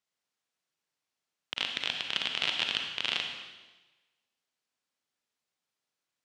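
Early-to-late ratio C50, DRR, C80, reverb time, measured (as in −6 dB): 4.5 dB, 3.0 dB, 6.0 dB, 1.2 s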